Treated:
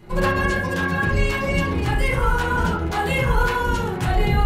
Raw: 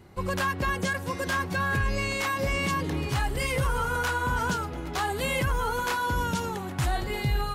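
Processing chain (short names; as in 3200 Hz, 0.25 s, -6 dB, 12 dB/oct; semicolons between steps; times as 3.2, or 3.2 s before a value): vocal rider 2 s; granular stretch 0.59×, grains 69 ms; reverb RT60 0.50 s, pre-delay 5 ms, DRR -6 dB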